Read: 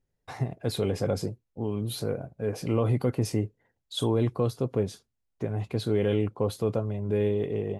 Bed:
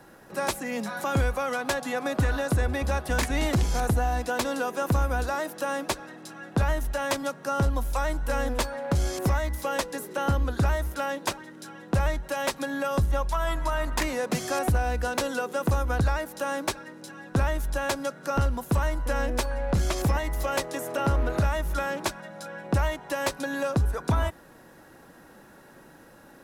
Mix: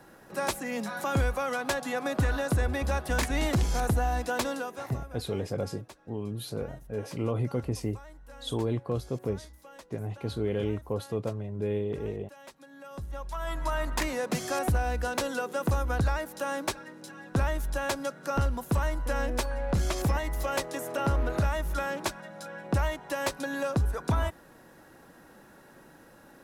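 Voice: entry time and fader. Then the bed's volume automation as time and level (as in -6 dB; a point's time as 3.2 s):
4.50 s, -4.5 dB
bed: 4.46 s -2 dB
5.24 s -21.5 dB
12.66 s -21.5 dB
13.68 s -2.5 dB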